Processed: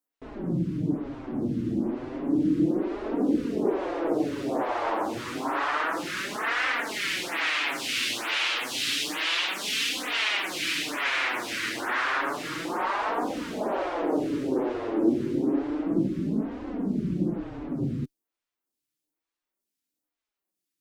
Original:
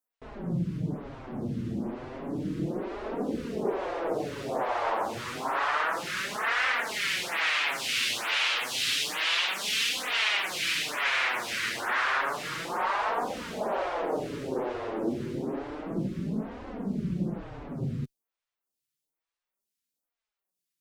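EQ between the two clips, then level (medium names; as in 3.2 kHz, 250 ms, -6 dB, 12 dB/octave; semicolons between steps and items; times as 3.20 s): peaking EQ 300 Hz +13 dB 0.49 oct; 0.0 dB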